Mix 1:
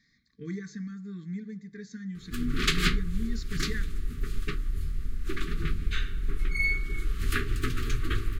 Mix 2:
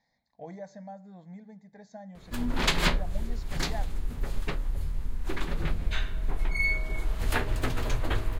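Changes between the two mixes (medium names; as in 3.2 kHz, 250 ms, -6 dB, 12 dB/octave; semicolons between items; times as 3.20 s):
speech -9.5 dB; master: remove brick-wall FIR band-stop 450–1100 Hz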